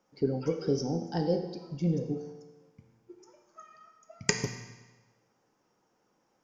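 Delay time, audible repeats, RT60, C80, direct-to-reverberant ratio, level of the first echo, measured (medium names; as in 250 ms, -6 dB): no echo, no echo, 1.2 s, 9.0 dB, 4.5 dB, no echo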